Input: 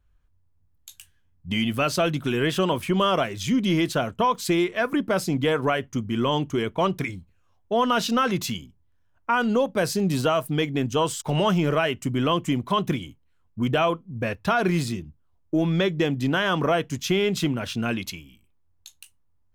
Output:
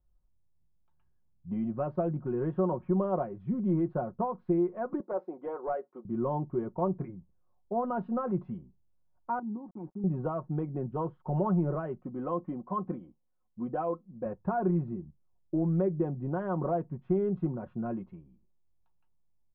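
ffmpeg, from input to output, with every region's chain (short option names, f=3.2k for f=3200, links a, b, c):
-filter_complex "[0:a]asettb=1/sr,asplit=3[a][b][c];[a]atrim=end=5.004[d];[b]atrim=start=5:end=6.05,asetpts=PTS-STARTPTS,afade=t=in:d=0.004:c=qsin,afade=t=out:st=1.046:d=0.004:c=qsin,highpass=f=360:w=0.5412,highpass=f=360:w=1.3066,volume=18dB,asoftclip=hard,volume=-18dB[e];[c]atrim=start=6.046[f];[d][e]acrossfade=d=0.004:c1=hsin:c2=qsin[g];[g][f]acrossfade=d=0.004:c1=qsin:c2=hsin,asettb=1/sr,asplit=3[h][i][j];[h]atrim=end=9.394[k];[i]atrim=start=9.39:end=10.04,asetpts=PTS-STARTPTS,afade=t=in:d=0.004:c=qsin,afade=t=out:st=0.646:d=0.004:c=qsin,asplit=3[l][m][n];[l]bandpass=f=300:t=q:w=8,volume=0dB[o];[m]bandpass=f=870:t=q:w=8,volume=-6dB[p];[n]bandpass=f=2.24k:t=q:w=8,volume=-9dB[q];[o][p][q]amix=inputs=3:normalize=0,bass=f=250:g=12,treble=f=4k:g=-10,aeval=exprs='val(0)*gte(abs(val(0)),0.00447)':c=same[r];[j]atrim=start=10.036[s];[k][r]acrossfade=d=0.004:c1=hsin:c2=qsin[t];[t][s]acrossfade=d=0.004:c1=qsin:c2=hsin,asettb=1/sr,asplit=3[u][v][w];[u]atrim=end=12.014[x];[v]atrim=start=12.01:end=14.26,asetpts=PTS-STARTPTS,afade=t=in:d=0.004:c=qsin,afade=t=out:st=2.246:d=0.004:c=qsin,lowshelf=f=170:g=-10.5,aecho=1:1:3.9:0.42,atrim=end_sample=99225[y];[w]atrim=start=14.256[z];[x][y]acrossfade=d=0.004:c1=hsin:c2=qsin[aa];[aa][z]acrossfade=d=0.004:c1=qsin:c2=hsin,lowpass=f=1k:w=0.5412,lowpass=f=1k:w=1.3066,aecho=1:1:5.5:0.58,volume=-8dB"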